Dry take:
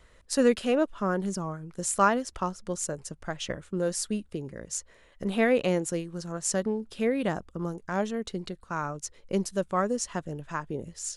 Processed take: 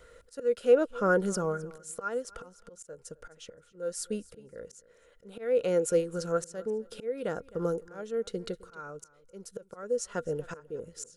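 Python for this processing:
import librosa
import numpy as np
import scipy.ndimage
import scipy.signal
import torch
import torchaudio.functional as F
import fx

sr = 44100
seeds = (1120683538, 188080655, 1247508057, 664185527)

p1 = fx.high_shelf(x, sr, hz=5900.0, db=7.5)
p2 = fx.auto_swell(p1, sr, attack_ms=719.0)
p3 = fx.small_body(p2, sr, hz=(480.0, 1400.0), ring_ms=45, db=17)
p4 = p3 + fx.echo_feedback(p3, sr, ms=261, feedback_pct=17, wet_db=-21.0, dry=0)
y = p4 * 10.0 ** (-2.0 / 20.0)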